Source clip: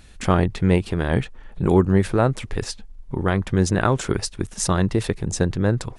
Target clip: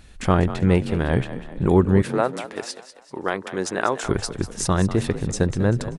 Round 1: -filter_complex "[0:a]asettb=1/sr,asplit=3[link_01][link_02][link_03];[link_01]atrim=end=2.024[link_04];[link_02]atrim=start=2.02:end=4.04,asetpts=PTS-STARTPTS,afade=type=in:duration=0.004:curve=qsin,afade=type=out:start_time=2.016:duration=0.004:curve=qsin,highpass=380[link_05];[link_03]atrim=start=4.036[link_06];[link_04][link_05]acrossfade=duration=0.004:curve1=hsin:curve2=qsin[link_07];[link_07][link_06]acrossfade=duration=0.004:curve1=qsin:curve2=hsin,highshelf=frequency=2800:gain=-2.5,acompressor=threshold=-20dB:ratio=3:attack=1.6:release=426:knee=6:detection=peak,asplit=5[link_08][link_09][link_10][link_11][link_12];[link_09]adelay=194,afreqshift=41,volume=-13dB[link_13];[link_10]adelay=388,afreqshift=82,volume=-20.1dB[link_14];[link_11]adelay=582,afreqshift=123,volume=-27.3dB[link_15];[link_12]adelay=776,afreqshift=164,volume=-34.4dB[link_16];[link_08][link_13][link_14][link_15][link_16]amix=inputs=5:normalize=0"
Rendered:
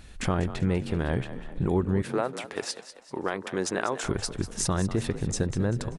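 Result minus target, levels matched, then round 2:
downward compressor: peak gain reduction +10 dB
-filter_complex "[0:a]asettb=1/sr,asplit=3[link_01][link_02][link_03];[link_01]atrim=end=2.024[link_04];[link_02]atrim=start=2.02:end=4.04,asetpts=PTS-STARTPTS,afade=type=in:duration=0.004:curve=qsin,afade=type=out:start_time=2.016:duration=0.004:curve=qsin,highpass=380[link_05];[link_03]atrim=start=4.036[link_06];[link_04][link_05]acrossfade=duration=0.004:curve1=hsin:curve2=qsin[link_07];[link_07][link_06]acrossfade=duration=0.004:curve1=qsin:curve2=hsin,highshelf=frequency=2800:gain=-2.5,asplit=5[link_08][link_09][link_10][link_11][link_12];[link_09]adelay=194,afreqshift=41,volume=-13dB[link_13];[link_10]adelay=388,afreqshift=82,volume=-20.1dB[link_14];[link_11]adelay=582,afreqshift=123,volume=-27.3dB[link_15];[link_12]adelay=776,afreqshift=164,volume=-34.4dB[link_16];[link_08][link_13][link_14][link_15][link_16]amix=inputs=5:normalize=0"

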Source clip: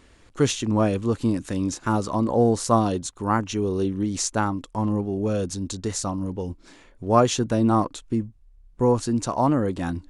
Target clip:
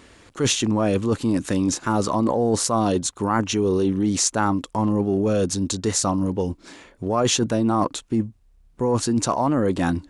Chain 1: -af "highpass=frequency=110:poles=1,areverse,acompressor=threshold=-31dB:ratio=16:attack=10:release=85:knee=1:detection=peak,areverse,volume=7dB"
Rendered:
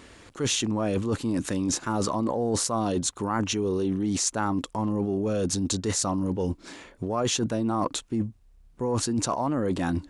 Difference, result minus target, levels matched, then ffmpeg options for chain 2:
downward compressor: peak gain reduction +6 dB
-af "highpass=frequency=110:poles=1,areverse,acompressor=threshold=-24.5dB:ratio=16:attack=10:release=85:knee=1:detection=peak,areverse,volume=7dB"

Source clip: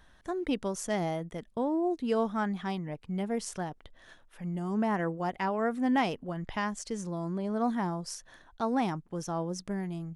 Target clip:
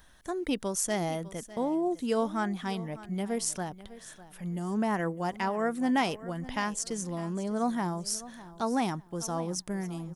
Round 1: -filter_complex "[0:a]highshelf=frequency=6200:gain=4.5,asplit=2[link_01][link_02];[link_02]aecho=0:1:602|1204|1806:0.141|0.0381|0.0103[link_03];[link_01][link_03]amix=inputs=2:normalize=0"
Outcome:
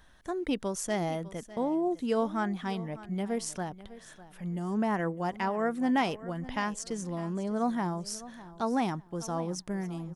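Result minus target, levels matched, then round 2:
8,000 Hz band −5.5 dB
-filter_complex "[0:a]highshelf=frequency=6200:gain=14.5,asplit=2[link_01][link_02];[link_02]aecho=0:1:602|1204|1806:0.141|0.0381|0.0103[link_03];[link_01][link_03]amix=inputs=2:normalize=0"

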